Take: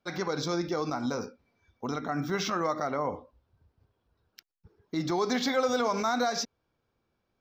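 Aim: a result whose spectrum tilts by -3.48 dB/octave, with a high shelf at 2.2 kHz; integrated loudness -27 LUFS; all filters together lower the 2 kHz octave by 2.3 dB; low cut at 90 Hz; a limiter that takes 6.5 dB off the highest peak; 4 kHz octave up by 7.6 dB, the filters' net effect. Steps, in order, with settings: high-pass 90 Hz; peaking EQ 2 kHz -7 dB; treble shelf 2.2 kHz +5 dB; peaking EQ 4 kHz +6 dB; trim +3.5 dB; peak limiter -15 dBFS

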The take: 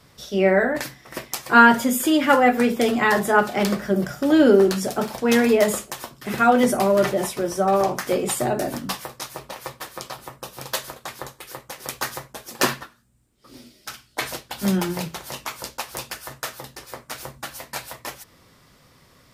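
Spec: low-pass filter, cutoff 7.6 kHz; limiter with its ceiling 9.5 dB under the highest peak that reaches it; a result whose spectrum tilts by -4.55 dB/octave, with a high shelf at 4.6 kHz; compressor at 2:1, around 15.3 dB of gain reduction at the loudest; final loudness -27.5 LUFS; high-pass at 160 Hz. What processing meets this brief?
high-pass 160 Hz; low-pass 7.6 kHz; treble shelf 4.6 kHz -7 dB; compression 2:1, threshold -38 dBFS; trim +8.5 dB; peak limiter -15 dBFS

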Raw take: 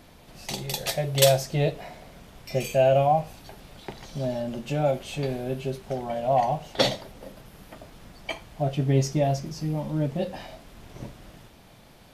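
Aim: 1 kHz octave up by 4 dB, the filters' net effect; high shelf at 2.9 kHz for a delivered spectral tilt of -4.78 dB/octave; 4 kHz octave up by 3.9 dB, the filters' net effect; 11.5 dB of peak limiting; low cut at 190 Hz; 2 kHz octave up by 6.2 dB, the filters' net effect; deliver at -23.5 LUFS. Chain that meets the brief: high-pass 190 Hz; peaking EQ 1 kHz +6 dB; peaking EQ 2 kHz +7 dB; treble shelf 2.9 kHz -7 dB; peaking EQ 4 kHz +7.5 dB; trim +4.5 dB; peak limiter -10.5 dBFS

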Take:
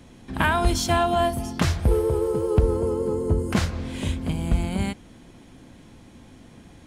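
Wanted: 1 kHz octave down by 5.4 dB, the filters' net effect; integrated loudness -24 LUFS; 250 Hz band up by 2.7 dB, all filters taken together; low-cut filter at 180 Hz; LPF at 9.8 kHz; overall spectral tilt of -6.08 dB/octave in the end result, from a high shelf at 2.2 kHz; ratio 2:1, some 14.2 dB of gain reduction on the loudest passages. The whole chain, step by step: high-pass 180 Hz; low-pass 9.8 kHz; peaking EQ 250 Hz +6 dB; peaking EQ 1 kHz -7 dB; treble shelf 2.2 kHz -8.5 dB; compression 2:1, threshold -43 dBFS; trim +14 dB

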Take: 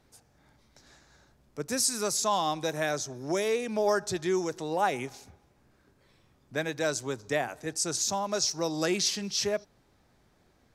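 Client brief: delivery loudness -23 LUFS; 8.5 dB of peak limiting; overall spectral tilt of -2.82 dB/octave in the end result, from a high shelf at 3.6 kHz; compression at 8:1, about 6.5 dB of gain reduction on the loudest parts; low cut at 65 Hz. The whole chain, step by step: high-pass 65 Hz; treble shelf 3.6 kHz +3.5 dB; compression 8:1, threshold -27 dBFS; trim +11 dB; peak limiter -12.5 dBFS

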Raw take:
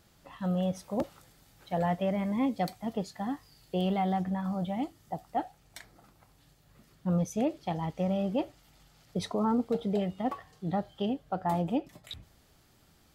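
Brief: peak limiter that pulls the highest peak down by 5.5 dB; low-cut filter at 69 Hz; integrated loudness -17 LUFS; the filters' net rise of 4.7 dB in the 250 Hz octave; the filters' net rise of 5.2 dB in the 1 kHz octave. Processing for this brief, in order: high-pass 69 Hz; peaking EQ 250 Hz +6 dB; peaking EQ 1 kHz +7 dB; trim +13 dB; peak limiter -5.5 dBFS

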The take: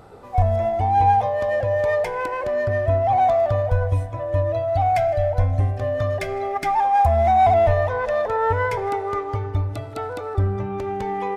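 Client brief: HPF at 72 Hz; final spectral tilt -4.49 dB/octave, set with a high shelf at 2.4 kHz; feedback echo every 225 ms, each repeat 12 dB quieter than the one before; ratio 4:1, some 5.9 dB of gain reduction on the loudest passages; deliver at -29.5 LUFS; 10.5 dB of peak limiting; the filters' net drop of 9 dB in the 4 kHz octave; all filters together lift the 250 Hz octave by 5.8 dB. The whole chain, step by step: high-pass 72 Hz; peaking EQ 250 Hz +8 dB; treble shelf 2.4 kHz -6.5 dB; peaking EQ 4 kHz -6 dB; compression 4:1, threshold -20 dBFS; peak limiter -22 dBFS; feedback delay 225 ms, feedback 25%, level -12 dB; trim -1 dB

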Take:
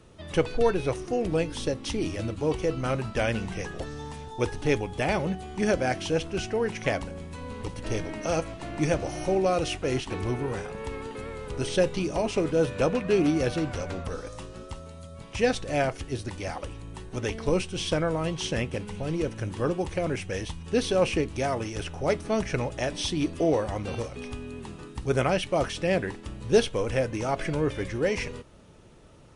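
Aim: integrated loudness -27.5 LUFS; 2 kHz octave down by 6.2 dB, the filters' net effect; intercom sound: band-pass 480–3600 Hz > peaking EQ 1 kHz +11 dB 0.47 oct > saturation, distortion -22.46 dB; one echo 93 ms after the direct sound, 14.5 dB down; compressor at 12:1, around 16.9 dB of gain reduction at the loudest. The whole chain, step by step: peaking EQ 2 kHz -9 dB; compression 12:1, threshold -32 dBFS; band-pass 480–3600 Hz; peaking EQ 1 kHz +11 dB 0.47 oct; delay 93 ms -14.5 dB; saturation -26.5 dBFS; trim +13.5 dB

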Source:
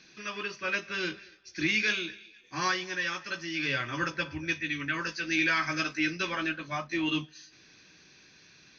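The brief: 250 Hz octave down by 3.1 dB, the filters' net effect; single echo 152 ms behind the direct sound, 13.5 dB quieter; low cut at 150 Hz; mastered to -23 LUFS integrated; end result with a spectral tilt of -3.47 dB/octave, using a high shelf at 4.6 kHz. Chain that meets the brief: high-pass 150 Hz; peaking EQ 250 Hz -4 dB; treble shelf 4.6 kHz -8 dB; delay 152 ms -13.5 dB; trim +9 dB

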